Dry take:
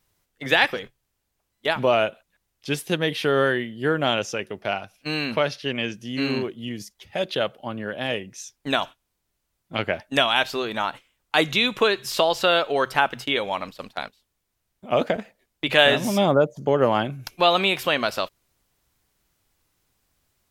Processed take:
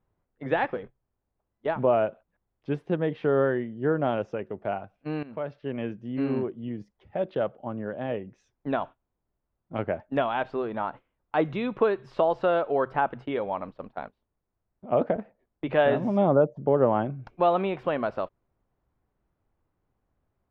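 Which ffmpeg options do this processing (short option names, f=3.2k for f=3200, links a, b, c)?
-filter_complex "[0:a]asplit=2[a][b];[a]atrim=end=5.23,asetpts=PTS-STARTPTS,afade=t=out:st=5.226:d=0.004:c=hsin:silence=0.158489[c];[b]atrim=start=5.23,asetpts=PTS-STARTPTS,afade=t=in:d=0.6:silence=0.158489[d];[c][d]concat=n=2:v=0:a=1,lowpass=1k,volume=-1.5dB"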